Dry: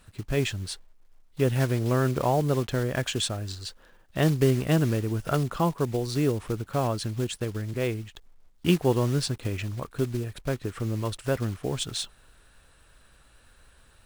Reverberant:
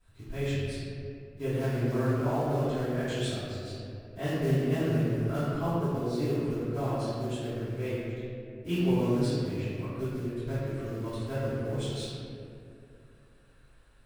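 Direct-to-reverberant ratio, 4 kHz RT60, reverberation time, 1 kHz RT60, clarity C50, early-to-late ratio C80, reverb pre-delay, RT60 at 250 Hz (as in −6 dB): −17.5 dB, 1.3 s, 2.5 s, 2.1 s, −4.0 dB, −2.0 dB, 3 ms, 3.1 s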